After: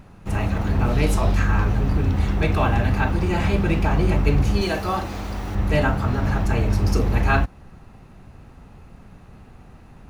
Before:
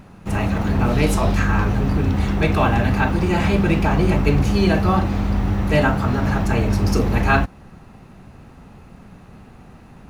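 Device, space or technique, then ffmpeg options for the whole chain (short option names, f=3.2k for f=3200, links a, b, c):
low shelf boost with a cut just above: -filter_complex "[0:a]asettb=1/sr,asplit=3[a][b][c];[a]atrim=end=4.614[d];[b]atrim=start=4.61:end=5.55,asetpts=PTS-STARTPTS,afade=t=in:d=0.004:c=qsin,afade=t=out:st=0.936:d=0.004:c=qsin,bass=f=250:g=-10,treble=f=4k:g=7[e];[c]atrim=start=5.546[f];[d][e]acrossfade=d=0.004:c1=hsin:c2=qsin[g];[g][f]acrossfade=d=0.004:c1=qsin:c2=hsin,lowshelf=f=89:g=6.5,equalizer=f=200:t=o:w=0.77:g=-3,volume=-3.5dB"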